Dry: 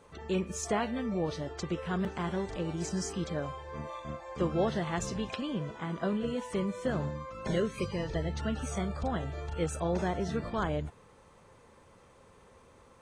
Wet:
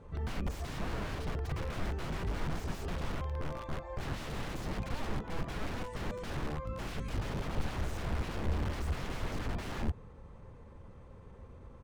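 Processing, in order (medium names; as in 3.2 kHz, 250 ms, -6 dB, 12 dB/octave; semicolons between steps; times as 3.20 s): tempo 1.1×; integer overflow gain 34.5 dB; RIAA curve playback; trim -1.5 dB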